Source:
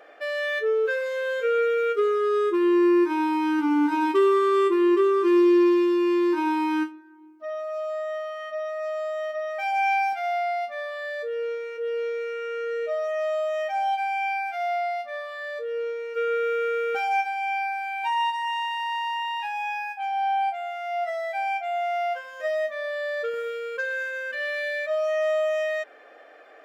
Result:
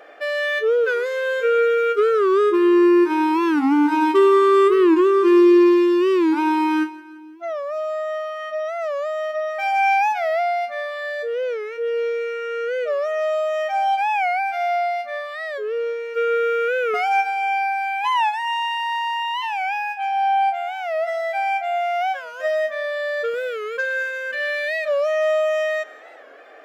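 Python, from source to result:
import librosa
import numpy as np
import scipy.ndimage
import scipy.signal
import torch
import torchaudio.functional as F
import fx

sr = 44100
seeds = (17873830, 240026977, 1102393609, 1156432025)

y = fx.echo_feedback(x, sr, ms=171, feedback_pct=53, wet_db=-19.0)
y = fx.record_warp(y, sr, rpm=45.0, depth_cents=160.0)
y = y * 10.0 ** (5.0 / 20.0)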